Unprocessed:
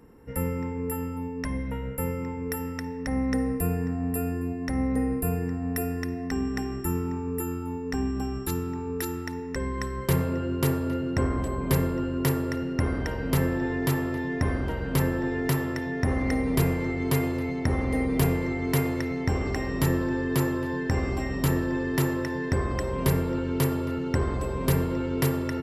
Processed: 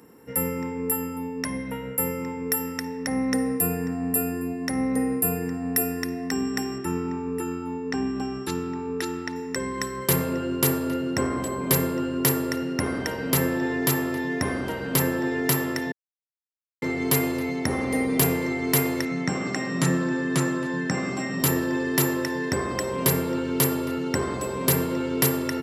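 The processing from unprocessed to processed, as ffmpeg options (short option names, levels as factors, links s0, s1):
-filter_complex "[0:a]asettb=1/sr,asplit=3[s0][s1][s2];[s0]atrim=end=6.784[s3];[s1]atrim=start=6.78:end=9.36,asetpts=PTS-STARTPTS,afade=t=in:d=0.004:c=qsin,afade=t=out:st=2.576:d=0.004:c=qsin,lowpass=4600[s4];[s2]atrim=start=9.356[s5];[s3][s4]acrossfade=d=0.004:c1=hsin:c2=qsin[s6];[s6][s5]acrossfade=d=0.004:c1=qsin:c2=hsin,asettb=1/sr,asplit=3[s7][s8][s9];[s7]atrim=end=19.054[s10];[s8]atrim=start=19.05:end=21.4,asetpts=PTS-STARTPTS,afade=t=in:d=0.004:c=qsin,afade=t=out:st=2.346:d=0.004:c=qsin,highpass=f=120:w=0.5412,highpass=f=120:w=1.3066,equalizer=f=170:t=q:w=4:g=9,equalizer=f=420:t=q:w=4:g=-6,equalizer=f=910:t=q:w=4:g=-4,equalizer=f=1300:t=q:w=4:g=3,equalizer=f=3100:t=q:w=4:g=-3,equalizer=f=4900:t=q:w=4:g=-5,lowpass=f=8600:w=0.5412,lowpass=f=8600:w=1.3066[s11];[s9]atrim=start=21.396[s12];[s10][s11]acrossfade=d=0.004:c1=hsin:c2=qsin[s13];[s13][s12]acrossfade=d=0.004:c1=qsin:c2=hsin,asplit=3[s14][s15][s16];[s14]atrim=end=15.92,asetpts=PTS-STARTPTS,afade=t=out:st=15.916:d=0.004:c=hsin[s17];[s15]atrim=start=15.92:end=16.82,asetpts=PTS-STARTPTS,volume=0[s18];[s16]atrim=start=16.82,asetpts=PTS-STARTPTS,afade=t=in:d=0.004:c=hsin[s19];[s17][s18][s19]concat=n=3:v=0:a=1,highpass=160,highshelf=f=3900:g=10,volume=1.33"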